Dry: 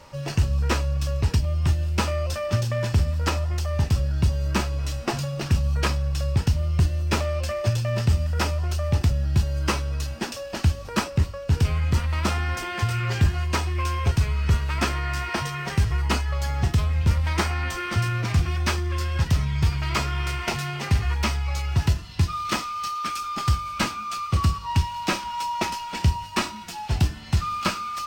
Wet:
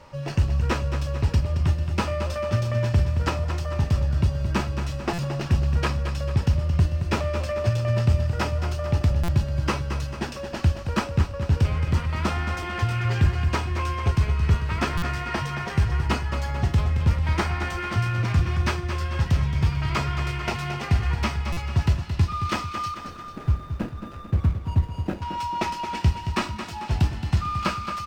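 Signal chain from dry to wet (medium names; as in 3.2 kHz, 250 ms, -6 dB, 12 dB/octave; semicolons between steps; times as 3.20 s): 22.94–25.22 s: median filter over 41 samples; treble shelf 4.5 kHz -10 dB; feedback delay 222 ms, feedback 51%, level -9 dB; buffer glitch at 5.13/9.23/14.97/21.52 s, samples 256, times 8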